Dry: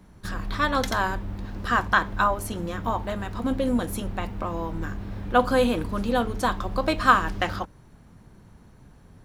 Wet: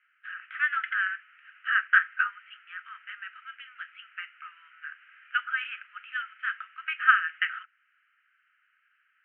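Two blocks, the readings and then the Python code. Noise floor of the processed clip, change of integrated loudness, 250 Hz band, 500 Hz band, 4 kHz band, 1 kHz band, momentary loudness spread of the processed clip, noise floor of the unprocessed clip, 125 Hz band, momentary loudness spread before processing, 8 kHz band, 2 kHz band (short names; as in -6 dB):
-71 dBFS, -2.0 dB, under -40 dB, under -40 dB, -6.5 dB, -8.5 dB, 21 LU, -52 dBFS, under -40 dB, 12 LU, under -40 dB, +3.0 dB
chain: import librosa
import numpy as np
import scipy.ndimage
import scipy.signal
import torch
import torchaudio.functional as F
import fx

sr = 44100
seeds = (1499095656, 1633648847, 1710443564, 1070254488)

y = fx.dynamic_eq(x, sr, hz=1800.0, q=2.6, threshold_db=-39.0, ratio=4.0, max_db=5)
y = scipy.signal.sosfilt(scipy.signal.cheby1(5, 1.0, [1300.0, 3000.0], 'bandpass', fs=sr, output='sos'), y)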